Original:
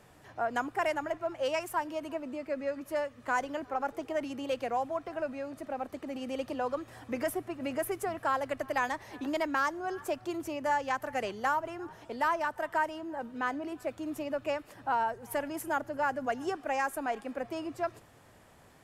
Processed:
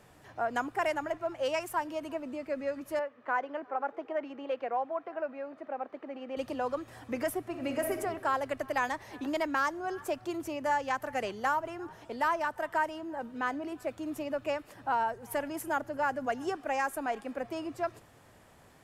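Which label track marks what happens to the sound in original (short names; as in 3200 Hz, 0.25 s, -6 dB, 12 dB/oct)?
2.990000	6.370000	BPF 340–2100 Hz
7.430000	7.990000	reverb throw, RT60 1.2 s, DRR 5 dB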